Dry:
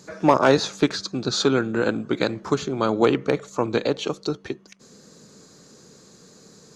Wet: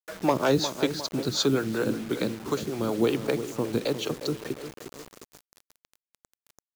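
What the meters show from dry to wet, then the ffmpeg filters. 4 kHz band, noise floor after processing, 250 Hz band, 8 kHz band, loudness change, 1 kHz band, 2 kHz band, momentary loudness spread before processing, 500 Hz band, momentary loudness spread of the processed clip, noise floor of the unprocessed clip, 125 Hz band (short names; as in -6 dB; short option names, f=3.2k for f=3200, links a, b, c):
-3.0 dB, under -85 dBFS, -4.0 dB, -1.5 dB, -5.0 dB, -8.0 dB, -6.5 dB, 10 LU, -5.5 dB, 13 LU, -51 dBFS, -3.0 dB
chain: -filter_complex "[0:a]asplit=2[a][b];[b]adelay=355,lowpass=f=1.2k:p=1,volume=-10.5dB,asplit=2[c][d];[d]adelay=355,lowpass=f=1.2k:p=1,volume=0.52,asplit=2[e][f];[f]adelay=355,lowpass=f=1.2k:p=1,volume=0.52,asplit=2[g][h];[h]adelay=355,lowpass=f=1.2k:p=1,volume=0.52,asplit=2[i][j];[j]adelay=355,lowpass=f=1.2k:p=1,volume=0.52,asplit=2[k][l];[l]adelay=355,lowpass=f=1.2k:p=1,volume=0.52[m];[a][c][e][g][i][k][m]amix=inputs=7:normalize=0,acrossover=split=500|3000[n][o][p];[o]acompressor=threshold=-38dB:ratio=1.5[q];[n][q][p]amix=inputs=3:normalize=0,acrossover=split=420[r][s];[r]aeval=exprs='val(0)*(1-0.7/2+0.7/2*cos(2*PI*5.3*n/s))':c=same[t];[s]aeval=exprs='val(0)*(1-0.7/2-0.7/2*cos(2*PI*5.3*n/s))':c=same[u];[t][u]amix=inputs=2:normalize=0,acrusher=bits=6:mix=0:aa=0.000001"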